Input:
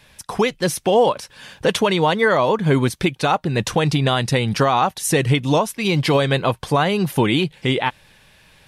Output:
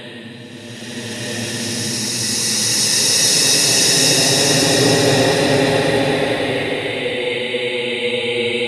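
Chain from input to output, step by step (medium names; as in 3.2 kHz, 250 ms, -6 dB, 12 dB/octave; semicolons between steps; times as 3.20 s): high-pass 360 Hz 12 dB/octave; slow attack 221 ms; Paulstretch 39×, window 0.10 s, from 4.23 s; swelling reverb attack 1410 ms, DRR -11 dB; trim +2.5 dB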